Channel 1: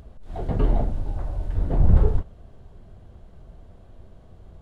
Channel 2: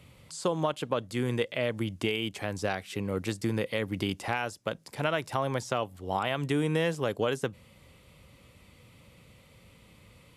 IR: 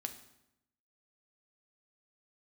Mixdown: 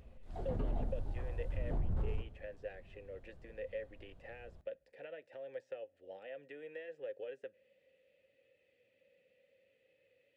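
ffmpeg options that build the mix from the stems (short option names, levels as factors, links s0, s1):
-filter_complex "[0:a]volume=0.168,asplit=2[s0][s1];[s1]volume=0.668[s2];[1:a]acrossover=split=610|2400[s3][s4][s5];[s3]acompressor=threshold=0.02:ratio=4[s6];[s4]acompressor=threshold=0.02:ratio=4[s7];[s5]acompressor=threshold=0.00282:ratio=4[s8];[s6][s7][s8]amix=inputs=3:normalize=0,flanger=delay=2.3:depth=1.9:regen=-59:speed=0.7:shape=sinusoidal,asplit=3[s9][s10][s11];[s9]bandpass=f=530:t=q:w=8,volume=1[s12];[s10]bandpass=f=1840:t=q:w=8,volume=0.501[s13];[s11]bandpass=f=2480:t=q:w=8,volume=0.355[s14];[s12][s13][s14]amix=inputs=3:normalize=0,volume=0.944,asplit=2[s15][s16];[s16]volume=0.106[s17];[2:a]atrim=start_sample=2205[s18];[s2][s17]amix=inputs=2:normalize=0[s19];[s19][s18]afir=irnorm=-1:irlink=0[s20];[s0][s15][s20]amix=inputs=3:normalize=0,alimiter=level_in=1.5:limit=0.0631:level=0:latency=1:release=58,volume=0.668"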